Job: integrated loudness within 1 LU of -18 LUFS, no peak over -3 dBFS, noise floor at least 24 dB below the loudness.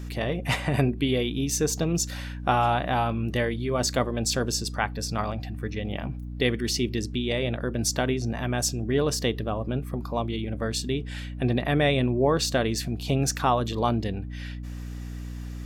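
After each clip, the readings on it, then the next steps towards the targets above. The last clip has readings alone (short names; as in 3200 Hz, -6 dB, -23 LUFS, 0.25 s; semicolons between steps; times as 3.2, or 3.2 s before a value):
hum 60 Hz; harmonics up to 300 Hz; hum level -33 dBFS; loudness -26.5 LUFS; peak -8.0 dBFS; loudness target -18.0 LUFS
-> de-hum 60 Hz, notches 5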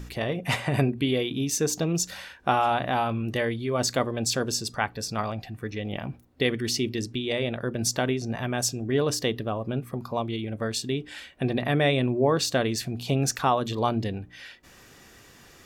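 hum none; loudness -27.0 LUFS; peak -7.5 dBFS; loudness target -18.0 LUFS
-> gain +9 dB; limiter -3 dBFS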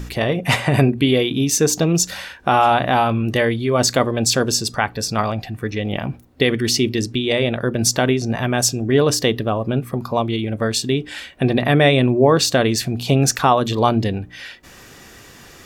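loudness -18.0 LUFS; peak -3.0 dBFS; noise floor -43 dBFS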